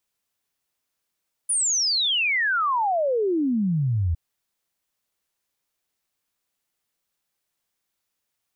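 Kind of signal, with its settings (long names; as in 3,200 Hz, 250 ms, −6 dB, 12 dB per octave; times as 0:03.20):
exponential sine sweep 10,000 Hz → 78 Hz 2.66 s −19.5 dBFS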